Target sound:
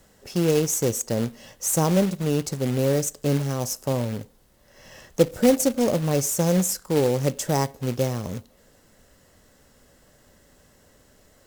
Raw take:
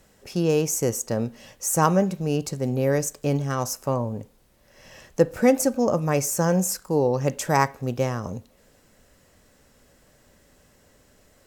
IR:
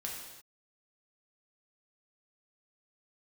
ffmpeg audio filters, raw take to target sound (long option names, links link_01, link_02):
-filter_complex "[0:a]bandreject=frequency=2400:width=8.2,acrossover=split=780|2700[link_01][link_02][link_03];[link_02]acompressor=threshold=-47dB:ratio=6[link_04];[link_01][link_04][link_03]amix=inputs=3:normalize=0,acrusher=bits=3:mode=log:mix=0:aa=0.000001,volume=1dB"